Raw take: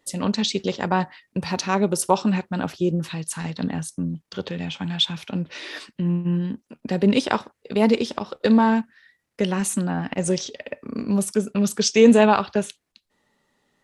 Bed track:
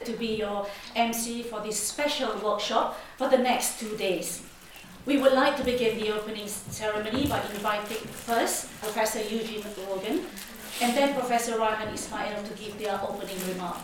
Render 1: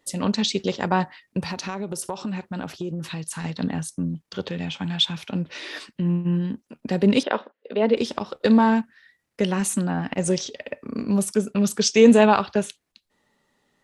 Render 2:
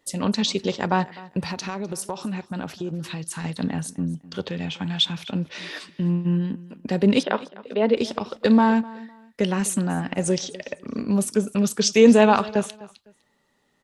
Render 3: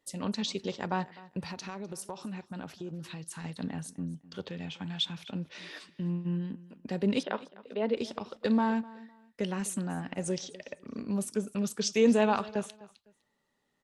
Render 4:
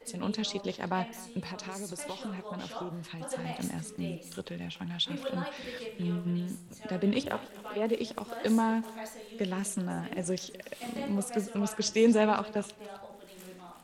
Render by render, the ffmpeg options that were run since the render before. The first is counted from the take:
-filter_complex "[0:a]asettb=1/sr,asplit=3[a][b][c];[a]atrim=end=1.414[d];[b]atrim=start=1.41:end=3.44,asetpts=PTS-STARTPTS,afade=t=in:d=0.004:c=qsin,afade=t=out:st=2.026:d=0.004:c=qsin,acompressor=threshold=-26dB:ratio=5:attack=3.2:release=140:knee=1:detection=peak[e];[c]atrim=start=3.436[f];[d][e]acrossfade=d=0.004:c1=hsin:c2=qsin[g];[g][f]acrossfade=d=0.004:c1=qsin:c2=hsin,asettb=1/sr,asplit=3[h][i][j];[h]atrim=end=7.234[k];[i]atrim=start=7.23:end=7.97,asetpts=PTS-STARTPTS,afade=t=in:d=0.004:c=qsin,afade=t=out:st=0.736:d=0.004:c=qsin,highpass=f=250:w=0.5412,highpass=f=250:w=1.3066,equalizer=f=340:t=q:w=4:g=-5,equalizer=f=540:t=q:w=4:g=5,equalizer=f=860:t=q:w=4:g=-5,equalizer=f=1.2k:t=q:w=4:g=-4,equalizer=f=2.3k:t=q:w=4:g=-6,lowpass=f=3.3k:w=0.5412,lowpass=f=3.3k:w=1.3066[l];[j]atrim=start=7.966[m];[k][l]acrossfade=d=0.004:c1=hsin:c2=qsin[n];[n][m]acrossfade=d=0.004:c1=qsin:c2=hsin"
-af "aecho=1:1:253|506:0.1|0.027"
-af "volume=-10dB"
-filter_complex "[1:a]volume=-16dB[a];[0:a][a]amix=inputs=2:normalize=0"

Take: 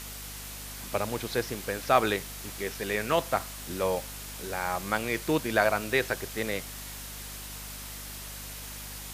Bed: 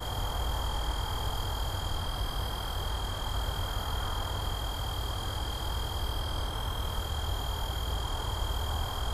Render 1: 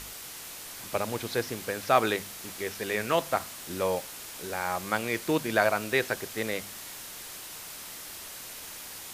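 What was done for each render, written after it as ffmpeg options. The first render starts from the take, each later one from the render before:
-af "bandreject=f=50:t=h:w=4,bandreject=f=100:t=h:w=4,bandreject=f=150:t=h:w=4,bandreject=f=200:t=h:w=4,bandreject=f=250:t=h:w=4"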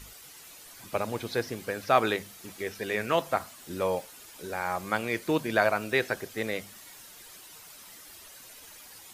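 -af "afftdn=nr=10:nf=-43"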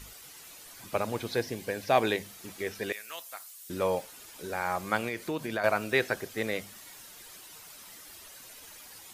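-filter_complex "[0:a]asettb=1/sr,asplit=3[a][b][c];[a]atrim=end=1.364[d];[b]atrim=start=1.36:end=2.24,asetpts=PTS-STARTPTS,afade=t=in:d=0.004:c=qsin,afade=t=out:st=0.876:d=0.004:c=qsin,equalizer=f=1.3k:t=o:w=0.23:g=-14[e];[c]atrim=start=2.236[f];[d][e]acrossfade=d=0.004:c1=hsin:c2=qsin[g];[g][f]acrossfade=d=0.004:c1=qsin:c2=hsin,asettb=1/sr,asplit=3[h][i][j];[h]atrim=end=2.924[k];[i]atrim=start=2.92:end=3.7,asetpts=PTS-STARTPTS,afade=t=in:d=0.004:c=qsin,afade=t=out:st=0.776:d=0.004:c=qsin,aderivative[l];[j]atrim=start=3.696[m];[k][l]acrossfade=d=0.004:c1=hsin:c2=qsin[n];[n][m]acrossfade=d=0.004:c1=qsin:c2=hsin,asettb=1/sr,asplit=3[o][p][q];[o]atrim=end=5.084[r];[p]atrim=start=5.08:end=5.64,asetpts=PTS-STARTPTS,afade=t=in:d=0.004:c=qsin,afade=t=out:st=0.556:d=0.004:c=qsin,acompressor=threshold=-31dB:ratio=2.5:attack=3.2:release=140:knee=1:detection=peak[s];[q]atrim=start=5.636[t];[r][s]acrossfade=d=0.004:c1=hsin:c2=qsin[u];[u][t]acrossfade=d=0.004:c1=qsin:c2=hsin"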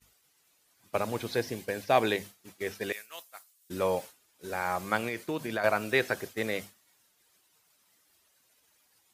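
-af "agate=range=-33dB:threshold=-36dB:ratio=3:detection=peak,highpass=53"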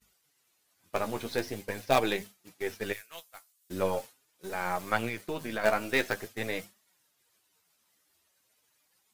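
-filter_complex "[0:a]asplit=2[a][b];[b]acrusher=bits=4:dc=4:mix=0:aa=0.000001,volume=-5dB[c];[a][c]amix=inputs=2:normalize=0,flanger=delay=4.5:depth=9.5:regen=32:speed=0.44:shape=triangular"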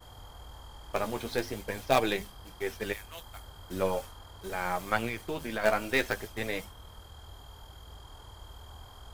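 -filter_complex "[1:a]volume=-16dB[a];[0:a][a]amix=inputs=2:normalize=0"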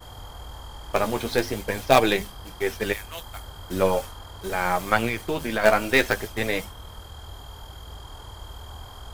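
-af "volume=8dB,alimiter=limit=-2dB:level=0:latency=1"

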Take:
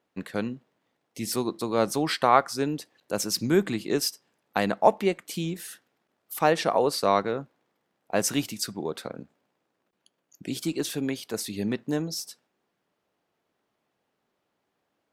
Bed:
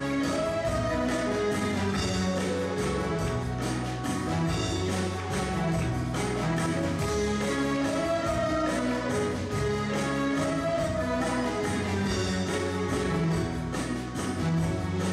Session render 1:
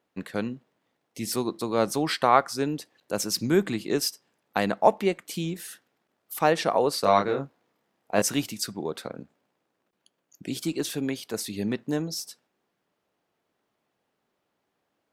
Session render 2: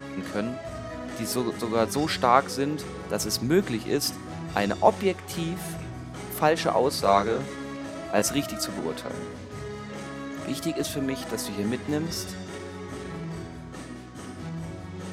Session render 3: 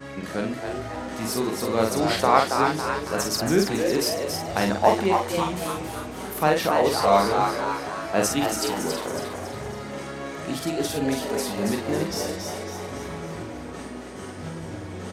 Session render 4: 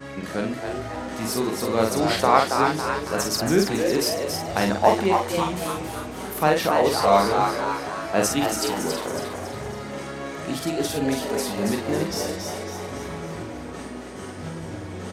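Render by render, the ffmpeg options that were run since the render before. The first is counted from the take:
-filter_complex "[0:a]asettb=1/sr,asplit=3[a][b][c];[a]atrim=end=7.014[d];[b]atrim=start=7.01:end=8.22,asetpts=PTS-STARTPTS,afade=t=in:d=0.004:c=qsin,afade=t=out:st=1.206:d=0.004:c=qsin,asplit=2[e][f];[f]adelay=29,volume=-3dB[g];[e][g]amix=inputs=2:normalize=0,atrim=end_sample=53361[h];[c]atrim=start=8.216[i];[d][h]acrossfade=d=0.004:c1=hsin:c2=qsin[j];[j][i]acrossfade=d=0.004:c1=qsin:c2=hsin"
-filter_complex "[1:a]volume=-8.5dB[a];[0:a][a]amix=inputs=2:normalize=0"
-filter_complex "[0:a]asplit=2[a][b];[b]adelay=45,volume=-4dB[c];[a][c]amix=inputs=2:normalize=0,asplit=2[d][e];[e]asplit=6[f][g][h][i][j][k];[f]adelay=277,afreqshift=140,volume=-5dB[l];[g]adelay=554,afreqshift=280,volume=-11dB[m];[h]adelay=831,afreqshift=420,volume=-17dB[n];[i]adelay=1108,afreqshift=560,volume=-23.1dB[o];[j]adelay=1385,afreqshift=700,volume=-29.1dB[p];[k]adelay=1662,afreqshift=840,volume=-35.1dB[q];[l][m][n][o][p][q]amix=inputs=6:normalize=0[r];[d][r]amix=inputs=2:normalize=0"
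-af "volume=1dB,alimiter=limit=-3dB:level=0:latency=1"

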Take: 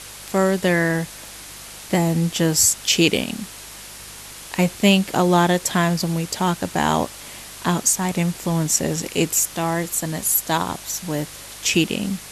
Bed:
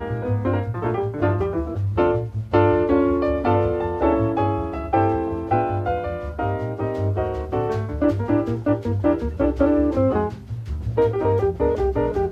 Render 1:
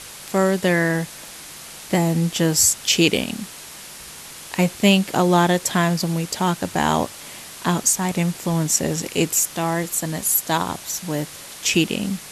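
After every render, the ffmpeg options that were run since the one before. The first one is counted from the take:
-af "bandreject=f=50:t=h:w=4,bandreject=f=100:t=h:w=4"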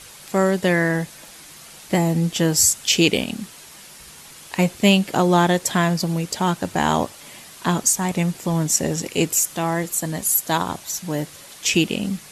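-af "afftdn=nr=6:nf=-39"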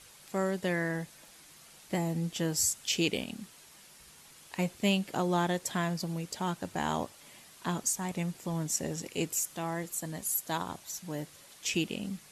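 -af "volume=-12.5dB"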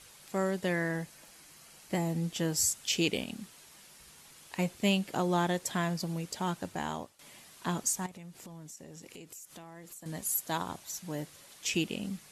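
-filter_complex "[0:a]asettb=1/sr,asplit=3[a][b][c];[a]atrim=end=1.004[d];[b]atrim=start=1:end=1.94,asetpts=PTS-STARTPTS,afade=t=in:d=0.004:c=qsin,afade=t=out:st=0.936:d=0.004:c=qsin,bandreject=f=3.6k:w=12[e];[c]atrim=start=1.936[f];[d][e]acrossfade=d=0.004:c1=hsin:c2=qsin[g];[g][f]acrossfade=d=0.004:c1=qsin:c2=hsin,asettb=1/sr,asplit=3[h][i][j];[h]atrim=end=8.064[k];[i]atrim=start=8.06:end=10.06,asetpts=PTS-STARTPTS,afade=t=in:d=0.004:c=qsin,afade=t=out:st=1.996:d=0.004:c=qsin,acompressor=threshold=-44dB:ratio=16:attack=3.2:release=140:knee=1:detection=peak[l];[j]atrim=start=10.056[m];[k][l]acrossfade=d=0.004:c1=hsin:c2=qsin[n];[n][m]acrossfade=d=0.004:c1=qsin:c2=hsin,asplit=2[o][p];[o]atrim=end=7.19,asetpts=PTS-STARTPTS,afade=t=out:st=6.6:d=0.59:silence=0.188365[q];[p]atrim=start=7.19,asetpts=PTS-STARTPTS,afade=t=in:d=0.004:c=hsin:silence=0.188365[r];[q][r]concat=n=2:v=0:a=1"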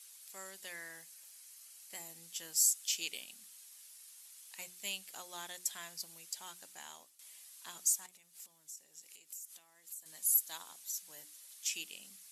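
-af "aderivative,bandreject=f=60:t=h:w=6,bandreject=f=120:t=h:w=6,bandreject=f=180:t=h:w=6,bandreject=f=240:t=h:w=6,bandreject=f=300:t=h:w=6,bandreject=f=360:t=h:w=6"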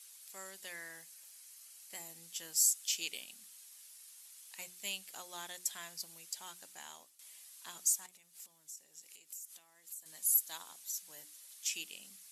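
-af anull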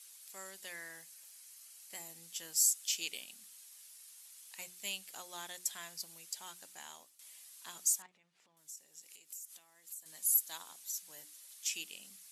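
-filter_complex "[0:a]asettb=1/sr,asplit=3[a][b][c];[a]atrim=end=8.024[d];[b]atrim=start=8.02:end=8.57,asetpts=PTS-STARTPTS,afade=t=in:d=0.004:c=qsin,afade=t=out:st=0.546:d=0.004:c=qsin,lowpass=2.4k[e];[c]atrim=start=8.566[f];[d][e]acrossfade=d=0.004:c1=hsin:c2=qsin[g];[g][f]acrossfade=d=0.004:c1=qsin:c2=hsin"

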